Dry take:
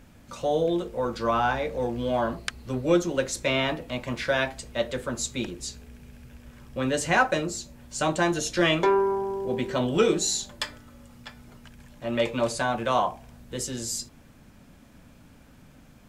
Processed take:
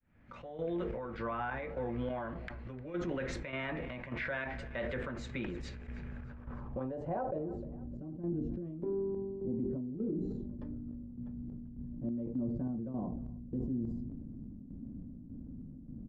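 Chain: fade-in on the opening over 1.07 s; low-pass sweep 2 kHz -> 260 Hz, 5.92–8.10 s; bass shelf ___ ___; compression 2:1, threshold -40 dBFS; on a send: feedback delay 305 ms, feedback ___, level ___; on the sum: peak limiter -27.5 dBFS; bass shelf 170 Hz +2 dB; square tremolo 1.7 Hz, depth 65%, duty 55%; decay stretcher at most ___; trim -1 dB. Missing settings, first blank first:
400 Hz, +3.5 dB, 49%, -22 dB, 24 dB/s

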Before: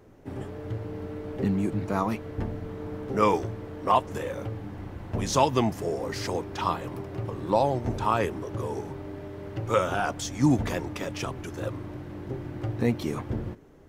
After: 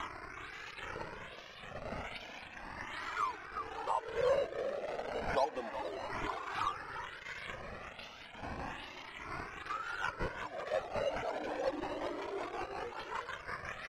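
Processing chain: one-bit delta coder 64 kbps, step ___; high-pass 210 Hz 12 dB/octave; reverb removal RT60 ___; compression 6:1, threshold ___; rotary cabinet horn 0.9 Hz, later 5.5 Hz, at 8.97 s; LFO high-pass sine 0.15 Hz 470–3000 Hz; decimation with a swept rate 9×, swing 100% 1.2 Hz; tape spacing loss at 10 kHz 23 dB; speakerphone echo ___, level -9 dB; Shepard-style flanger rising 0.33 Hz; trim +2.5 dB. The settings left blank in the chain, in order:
-22.5 dBFS, 0.79 s, -27 dBFS, 370 ms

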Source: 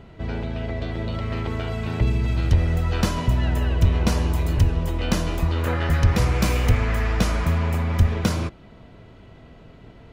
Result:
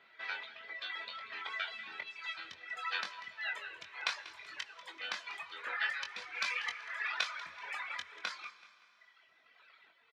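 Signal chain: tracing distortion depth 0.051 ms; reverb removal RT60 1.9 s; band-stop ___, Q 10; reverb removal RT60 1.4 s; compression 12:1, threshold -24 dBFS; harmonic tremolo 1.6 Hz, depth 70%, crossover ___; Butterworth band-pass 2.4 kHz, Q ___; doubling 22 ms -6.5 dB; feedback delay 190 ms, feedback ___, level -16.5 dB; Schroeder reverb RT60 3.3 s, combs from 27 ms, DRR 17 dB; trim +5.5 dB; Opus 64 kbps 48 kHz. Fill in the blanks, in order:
2.9 kHz, 470 Hz, 0.86, 40%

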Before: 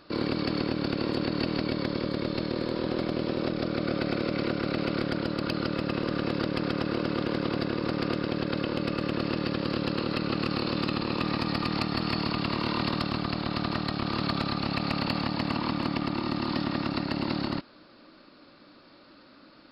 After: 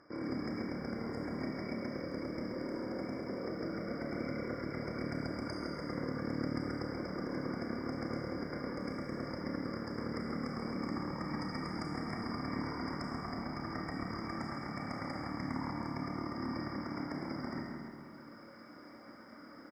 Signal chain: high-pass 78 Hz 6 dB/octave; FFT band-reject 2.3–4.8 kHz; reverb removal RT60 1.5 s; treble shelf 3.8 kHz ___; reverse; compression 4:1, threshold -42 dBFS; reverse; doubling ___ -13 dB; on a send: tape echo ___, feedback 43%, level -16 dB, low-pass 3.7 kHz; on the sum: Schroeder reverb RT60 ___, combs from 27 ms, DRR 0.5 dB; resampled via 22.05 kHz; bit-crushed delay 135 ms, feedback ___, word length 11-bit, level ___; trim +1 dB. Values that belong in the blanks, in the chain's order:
+7 dB, 31 ms, 754 ms, 1.7 s, 55%, -11.5 dB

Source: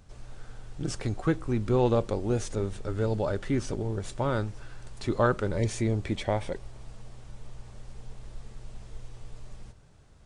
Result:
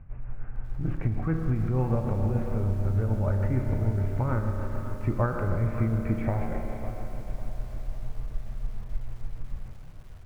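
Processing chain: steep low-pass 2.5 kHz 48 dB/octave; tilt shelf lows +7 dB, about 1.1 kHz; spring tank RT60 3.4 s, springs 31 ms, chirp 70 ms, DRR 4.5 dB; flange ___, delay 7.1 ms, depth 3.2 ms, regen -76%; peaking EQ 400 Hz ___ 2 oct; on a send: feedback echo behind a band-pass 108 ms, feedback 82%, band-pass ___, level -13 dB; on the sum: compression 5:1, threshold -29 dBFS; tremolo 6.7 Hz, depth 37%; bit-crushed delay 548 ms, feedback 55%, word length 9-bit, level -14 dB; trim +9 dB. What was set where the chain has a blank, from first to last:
1.1 Hz, -12.5 dB, 480 Hz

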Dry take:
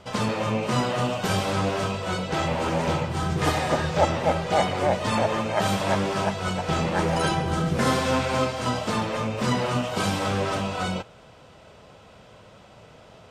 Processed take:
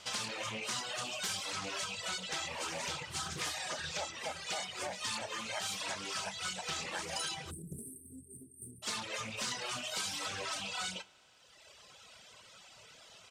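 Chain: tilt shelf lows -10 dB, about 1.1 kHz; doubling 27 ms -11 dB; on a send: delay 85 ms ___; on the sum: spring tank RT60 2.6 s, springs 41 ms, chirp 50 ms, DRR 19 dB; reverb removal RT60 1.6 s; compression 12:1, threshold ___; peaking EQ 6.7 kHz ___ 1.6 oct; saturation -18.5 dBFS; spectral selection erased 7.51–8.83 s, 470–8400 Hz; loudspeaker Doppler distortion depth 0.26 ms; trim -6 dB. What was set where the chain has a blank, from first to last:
-21.5 dB, -30 dBFS, +5.5 dB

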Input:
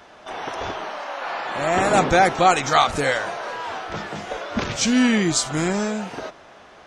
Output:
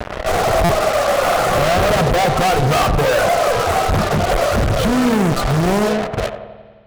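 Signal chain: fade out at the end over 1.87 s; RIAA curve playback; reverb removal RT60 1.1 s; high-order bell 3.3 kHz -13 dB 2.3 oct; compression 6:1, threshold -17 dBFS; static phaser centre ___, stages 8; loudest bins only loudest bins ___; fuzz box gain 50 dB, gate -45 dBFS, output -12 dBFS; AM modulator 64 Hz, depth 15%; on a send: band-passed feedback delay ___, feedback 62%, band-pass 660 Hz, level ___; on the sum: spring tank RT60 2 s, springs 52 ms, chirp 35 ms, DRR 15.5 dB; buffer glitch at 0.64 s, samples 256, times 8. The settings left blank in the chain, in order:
1.4 kHz, 64, 89 ms, -7.5 dB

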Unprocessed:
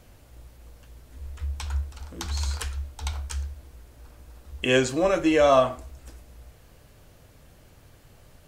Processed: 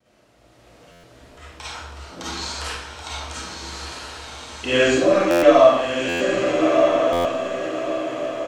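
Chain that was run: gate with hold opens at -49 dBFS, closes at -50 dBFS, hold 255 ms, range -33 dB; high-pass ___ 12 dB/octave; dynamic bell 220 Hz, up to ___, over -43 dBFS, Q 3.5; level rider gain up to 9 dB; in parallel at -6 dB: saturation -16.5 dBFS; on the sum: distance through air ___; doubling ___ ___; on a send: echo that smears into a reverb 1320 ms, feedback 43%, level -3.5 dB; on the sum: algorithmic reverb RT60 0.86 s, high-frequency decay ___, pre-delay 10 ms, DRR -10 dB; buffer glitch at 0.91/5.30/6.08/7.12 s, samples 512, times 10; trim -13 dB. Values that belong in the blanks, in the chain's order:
160 Hz, +3 dB, 61 m, 41 ms, -13 dB, 0.9×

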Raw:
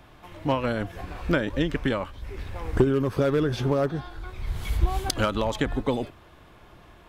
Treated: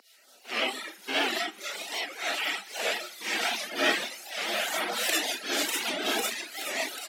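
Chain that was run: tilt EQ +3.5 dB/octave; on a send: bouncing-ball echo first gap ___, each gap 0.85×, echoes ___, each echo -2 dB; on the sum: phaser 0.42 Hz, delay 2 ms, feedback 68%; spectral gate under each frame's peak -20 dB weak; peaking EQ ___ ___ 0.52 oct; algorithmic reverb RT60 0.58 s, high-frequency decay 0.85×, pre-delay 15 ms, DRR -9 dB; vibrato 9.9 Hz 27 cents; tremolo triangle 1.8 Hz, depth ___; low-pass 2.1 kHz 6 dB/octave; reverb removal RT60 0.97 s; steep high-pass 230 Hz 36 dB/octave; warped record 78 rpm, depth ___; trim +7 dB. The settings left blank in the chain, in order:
590 ms, 7, 1.1 kHz, -11 dB, 55%, 160 cents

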